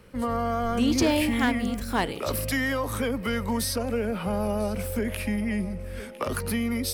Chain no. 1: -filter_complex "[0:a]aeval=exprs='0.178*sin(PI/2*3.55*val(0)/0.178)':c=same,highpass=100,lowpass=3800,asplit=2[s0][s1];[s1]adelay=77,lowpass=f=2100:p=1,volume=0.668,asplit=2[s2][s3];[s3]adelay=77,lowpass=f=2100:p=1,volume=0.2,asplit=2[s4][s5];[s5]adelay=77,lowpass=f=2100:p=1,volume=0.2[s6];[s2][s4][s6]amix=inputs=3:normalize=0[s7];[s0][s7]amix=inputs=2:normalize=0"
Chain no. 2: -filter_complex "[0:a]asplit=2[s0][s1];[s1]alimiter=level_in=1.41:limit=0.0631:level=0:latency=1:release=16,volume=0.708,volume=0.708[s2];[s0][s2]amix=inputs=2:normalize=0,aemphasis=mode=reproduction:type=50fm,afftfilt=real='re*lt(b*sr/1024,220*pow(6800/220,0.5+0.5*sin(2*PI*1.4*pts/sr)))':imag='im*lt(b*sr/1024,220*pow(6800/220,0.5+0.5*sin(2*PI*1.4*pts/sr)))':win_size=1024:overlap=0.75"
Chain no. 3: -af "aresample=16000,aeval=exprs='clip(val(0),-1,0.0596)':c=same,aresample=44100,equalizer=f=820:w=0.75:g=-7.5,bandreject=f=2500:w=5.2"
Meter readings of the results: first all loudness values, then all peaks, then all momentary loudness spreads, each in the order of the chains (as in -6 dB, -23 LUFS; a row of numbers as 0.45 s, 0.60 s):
-18.0 LUFS, -26.5 LUFS, -31.0 LUFS; -6.5 dBFS, -12.0 dBFS, -15.0 dBFS; 3 LU, 7 LU, 6 LU